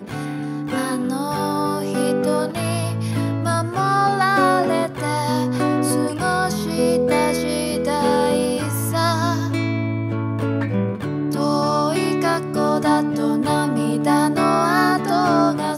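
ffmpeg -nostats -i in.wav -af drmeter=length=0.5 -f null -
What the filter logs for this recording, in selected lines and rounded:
Channel 1: DR: 9.9
Overall DR: 9.9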